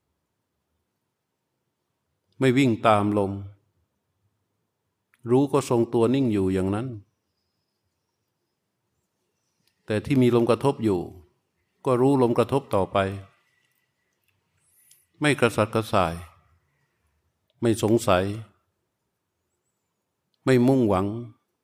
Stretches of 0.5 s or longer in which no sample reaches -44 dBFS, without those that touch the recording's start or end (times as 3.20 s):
3.52–5.14 s
7.01–9.88 s
11.21–11.85 s
13.26–14.91 s
16.29–17.62 s
18.46–20.46 s